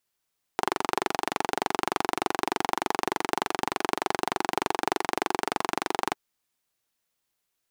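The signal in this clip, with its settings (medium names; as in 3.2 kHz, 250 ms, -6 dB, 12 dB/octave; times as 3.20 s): single-cylinder engine model, steady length 5.57 s, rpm 2800, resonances 380/790 Hz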